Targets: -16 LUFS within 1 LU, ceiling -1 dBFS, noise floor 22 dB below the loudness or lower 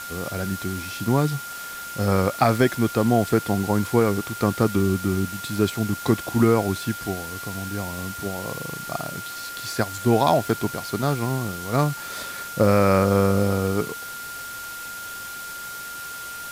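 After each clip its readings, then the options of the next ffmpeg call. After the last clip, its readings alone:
steady tone 1400 Hz; tone level -34 dBFS; noise floor -35 dBFS; noise floor target -46 dBFS; loudness -24.0 LUFS; peak -6.0 dBFS; loudness target -16.0 LUFS
-> -af "bandreject=f=1.4k:w=30"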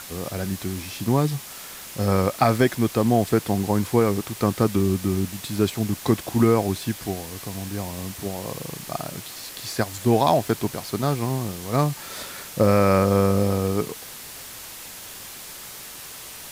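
steady tone none; noise floor -39 dBFS; noise floor target -46 dBFS
-> -af "afftdn=nr=7:nf=-39"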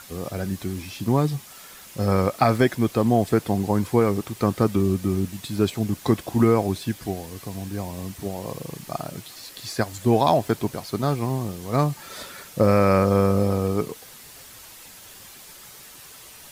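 noise floor -45 dBFS; noise floor target -46 dBFS
-> -af "afftdn=nr=6:nf=-45"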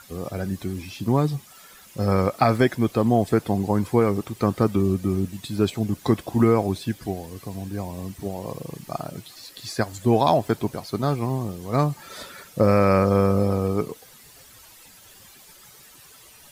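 noise floor -49 dBFS; loudness -23.5 LUFS; peak -6.5 dBFS; loudness target -16.0 LUFS
-> -af "volume=7.5dB,alimiter=limit=-1dB:level=0:latency=1"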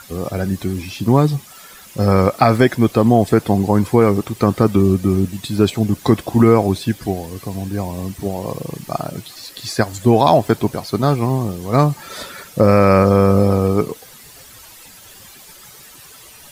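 loudness -16.5 LUFS; peak -1.0 dBFS; noise floor -42 dBFS

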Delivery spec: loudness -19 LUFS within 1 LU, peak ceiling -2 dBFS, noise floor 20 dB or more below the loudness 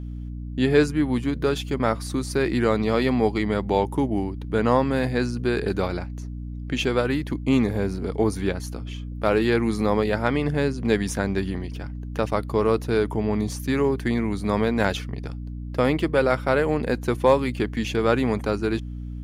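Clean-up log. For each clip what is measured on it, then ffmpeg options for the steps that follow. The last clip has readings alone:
hum 60 Hz; harmonics up to 300 Hz; hum level -31 dBFS; loudness -23.5 LUFS; peak -6.0 dBFS; loudness target -19.0 LUFS
-> -af "bandreject=f=60:t=h:w=4,bandreject=f=120:t=h:w=4,bandreject=f=180:t=h:w=4,bandreject=f=240:t=h:w=4,bandreject=f=300:t=h:w=4"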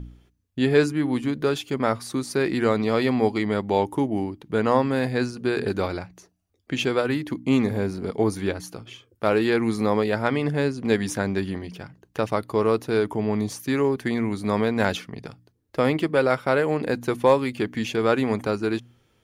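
hum none; loudness -24.0 LUFS; peak -6.0 dBFS; loudness target -19.0 LUFS
-> -af "volume=5dB,alimiter=limit=-2dB:level=0:latency=1"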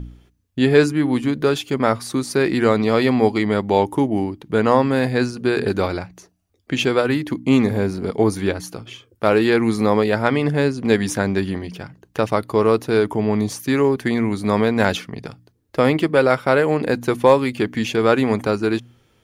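loudness -19.0 LUFS; peak -2.0 dBFS; noise floor -61 dBFS

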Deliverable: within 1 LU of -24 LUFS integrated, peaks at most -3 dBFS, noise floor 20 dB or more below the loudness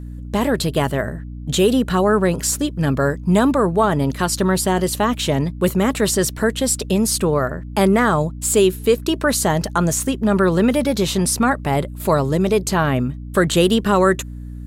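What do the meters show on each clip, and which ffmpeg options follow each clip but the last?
hum 60 Hz; harmonics up to 300 Hz; hum level -29 dBFS; loudness -18.5 LUFS; peak -4.0 dBFS; loudness target -24.0 LUFS
-> -af "bandreject=f=60:t=h:w=6,bandreject=f=120:t=h:w=6,bandreject=f=180:t=h:w=6,bandreject=f=240:t=h:w=6,bandreject=f=300:t=h:w=6"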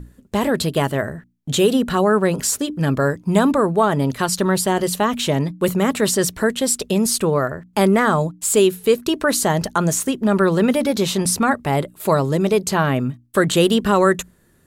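hum none; loudness -18.5 LUFS; peak -3.5 dBFS; loudness target -24.0 LUFS
-> -af "volume=-5.5dB"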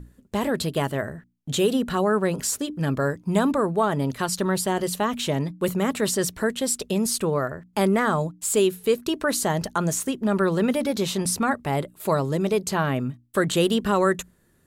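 loudness -24.0 LUFS; peak -9.0 dBFS; noise floor -61 dBFS

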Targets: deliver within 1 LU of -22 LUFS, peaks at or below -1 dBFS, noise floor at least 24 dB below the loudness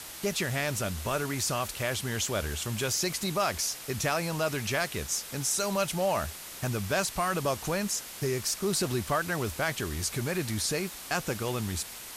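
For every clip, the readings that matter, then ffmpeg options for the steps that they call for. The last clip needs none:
noise floor -43 dBFS; noise floor target -54 dBFS; loudness -30.0 LUFS; peak -15.0 dBFS; loudness target -22.0 LUFS
-> -af "afftdn=nr=11:nf=-43"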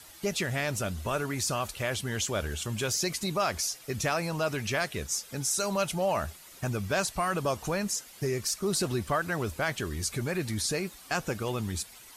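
noise floor -51 dBFS; noise floor target -55 dBFS
-> -af "afftdn=nr=6:nf=-51"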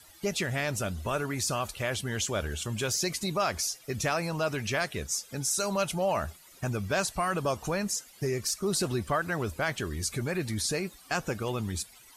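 noise floor -55 dBFS; loudness -30.5 LUFS; peak -16.0 dBFS; loudness target -22.0 LUFS
-> -af "volume=8.5dB"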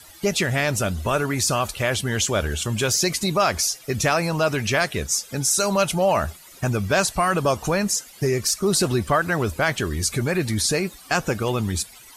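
loudness -22.0 LUFS; peak -7.5 dBFS; noise floor -46 dBFS

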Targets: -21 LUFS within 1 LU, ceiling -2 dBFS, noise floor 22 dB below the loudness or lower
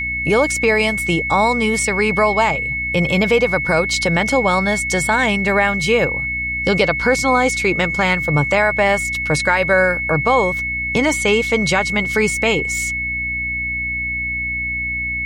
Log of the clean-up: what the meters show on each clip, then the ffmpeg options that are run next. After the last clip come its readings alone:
hum 60 Hz; harmonics up to 300 Hz; hum level -30 dBFS; steady tone 2200 Hz; tone level -20 dBFS; loudness -16.5 LUFS; peak -2.5 dBFS; loudness target -21.0 LUFS
-> -af "bandreject=f=60:t=h:w=6,bandreject=f=120:t=h:w=6,bandreject=f=180:t=h:w=6,bandreject=f=240:t=h:w=6,bandreject=f=300:t=h:w=6"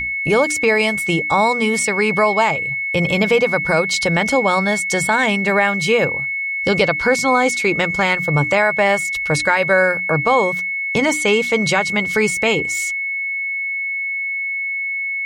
hum none; steady tone 2200 Hz; tone level -20 dBFS
-> -af "bandreject=f=2.2k:w=30"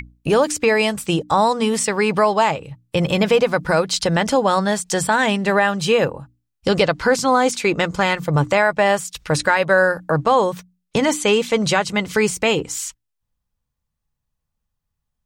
steady tone none; loudness -18.5 LUFS; peak -3.5 dBFS; loudness target -21.0 LUFS
-> -af "volume=-2.5dB"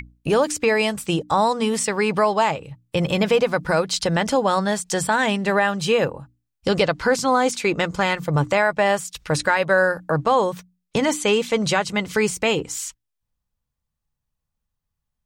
loudness -21.0 LUFS; peak -6.0 dBFS; noise floor -80 dBFS

